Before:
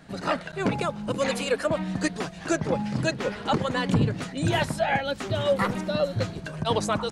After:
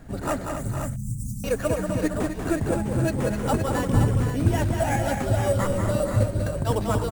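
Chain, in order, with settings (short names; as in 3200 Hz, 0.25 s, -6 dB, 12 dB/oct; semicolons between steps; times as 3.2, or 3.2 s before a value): RIAA curve playback; in parallel at +2 dB: compressor, threshold -23 dBFS, peak gain reduction 14.5 dB; on the sum: bell 170 Hz -13 dB 0.41 oct; sample-rate reducer 8600 Hz, jitter 0%; 0.44–1.44 inverse Chebyshev band-stop 410–3000 Hz, stop band 50 dB; on a send: tapped delay 0.189/0.257/0.462/0.519 s -6/-8.5/-10/-8 dB; on the sum: gain -7 dB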